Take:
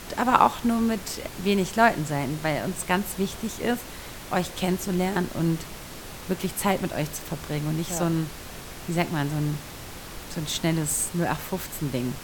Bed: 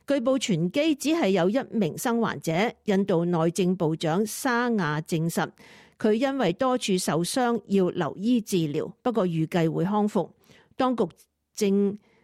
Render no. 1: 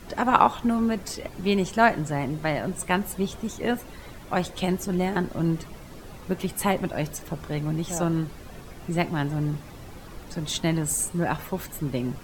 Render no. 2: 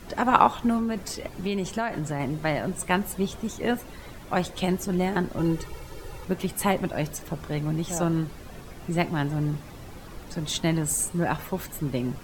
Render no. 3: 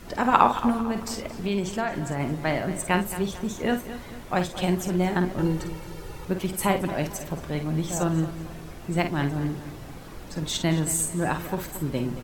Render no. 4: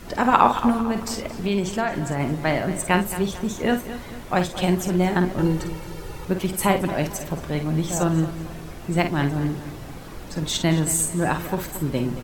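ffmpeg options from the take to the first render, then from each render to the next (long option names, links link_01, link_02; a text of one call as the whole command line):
ffmpeg -i in.wav -af "afftdn=noise_reduction=11:noise_floor=-40" out.wav
ffmpeg -i in.wav -filter_complex "[0:a]asettb=1/sr,asplit=3[link_01][link_02][link_03];[link_01]atrim=end=0.774[link_04];[link_02]atrim=start=0.77:end=2.2,asetpts=PTS-STARTPTS,afade=type=in:duration=0.004:curve=qsin,afade=type=out:start_time=1.426:duration=0.004:curve=qsin,acompressor=threshold=-23dB:ratio=6:attack=3.2:release=140:knee=1:detection=peak[link_05];[link_03]atrim=start=2.196[link_06];[link_04][link_05]acrossfade=duration=0.004:curve1=hsin:curve2=qsin[link_07];[link_07][link_06]acrossfade=duration=0.004:curve1=qsin:curve2=hsin,asettb=1/sr,asplit=3[link_08][link_09][link_10];[link_08]atrim=end=5.384[link_11];[link_09]atrim=start=5.38:end=6.25,asetpts=PTS-STARTPTS,afade=type=in:duration=0.004:curve=qsin,afade=type=out:start_time=0.866:duration=0.004:curve=qsin,aecho=1:1:2.2:0.86,atrim=end_sample=38367[link_12];[link_10]atrim=start=6.246[link_13];[link_11][link_12]acrossfade=duration=0.004:curve1=hsin:curve2=qsin[link_14];[link_14][link_13]acrossfade=duration=0.004:curve1=qsin:curve2=hsin" out.wav
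ffmpeg -i in.wav -filter_complex "[0:a]asplit=2[link_01][link_02];[link_02]adelay=50,volume=-8.5dB[link_03];[link_01][link_03]amix=inputs=2:normalize=0,asplit=2[link_04][link_05];[link_05]adelay=223,lowpass=frequency=4300:poles=1,volume=-13dB,asplit=2[link_06][link_07];[link_07]adelay=223,lowpass=frequency=4300:poles=1,volume=0.46,asplit=2[link_08][link_09];[link_09]adelay=223,lowpass=frequency=4300:poles=1,volume=0.46,asplit=2[link_10][link_11];[link_11]adelay=223,lowpass=frequency=4300:poles=1,volume=0.46,asplit=2[link_12][link_13];[link_13]adelay=223,lowpass=frequency=4300:poles=1,volume=0.46[link_14];[link_04][link_06][link_08][link_10][link_12][link_14]amix=inputs=6:normalize=0" out.wav
ffmpeg -i in.wav -af "volume=3.5dB,alimiter=limit=-1dB:level=0:latency=1" out.wav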